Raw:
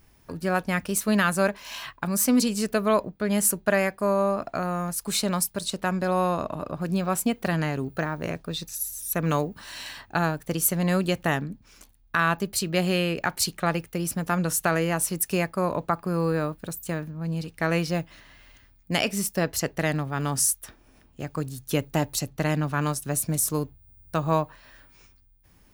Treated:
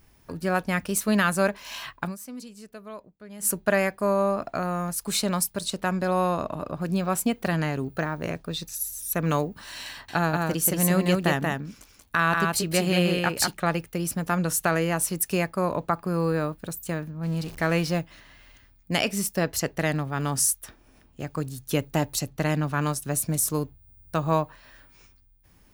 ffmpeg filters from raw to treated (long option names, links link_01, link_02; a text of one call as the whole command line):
ffmpeg -i in.wav -filter_complex "[0:a]asettb=1/sr,asplit=3[link_01][link_02][link_03];[link_01]atrim=end=9.904[link_04];[link_02]atrim=start=9.9:end=13.54,asetpts=PTS-STARTPTS,afade=type=in:duration=0.004:curve=qsin,afade=type=out:start_time=3.636:duration=0.004:curve=qsin,aecho=1:1:183:0.708,atrim=end_sample=160524[link_05];[link_03]atrim=start=13.536[link_06];[link_04][link_05]acrossfade=duration=0.004:curve1=hsin:curve2=qsin[link_07];[link_07][link_06]acrossfade=duration=0.004:curve1=qsin:curve2=hsin,asettb=1/sr,asplit=3[link_08][link_09][link_10];[link_08]atrim=end=17.234[link_11];[link_09]atrim=start=17.23:end=17.99,asetpts=PTS-STARTPTS,afade=type=in:duration=0.004:curve=qsin,afade=type=out:start_time=0.756:duration=0.004:curve=qsin,aeval=exprs='val(0)+0.5*0.0133*sgn(val(0))':channel_layout=same[link_12];[link_10]atrim=start=17.986[link_13];[link_11][link_12]acrossfade=duration=0.004:curve1=hsin:curve2=qsin[link_14];[link_14][link_13]acrossfade=duration=0.004:curve1=qsin:curve2=hsin,asplit=3[link_15][link_16][link_17];[link_15]atrim=end=2.16,asetpts=PTS-STARTPTS,afade=type=out:start_time=2.04:duration=0.12:silence=0.11885[link_18];[link_16]atrim=start=2.16:end=3.39,asetpts=PTS-STARTPTS,volume=-18.5dB[link_19];[link_17]atrim=start=3.39,asetpts=PTS-STARTPTS,afade=type=in:duration=0.12:silence=0.11885[link_20];[link_18][link_19][link_20]concat=n=3:v=0:a=1" out.wav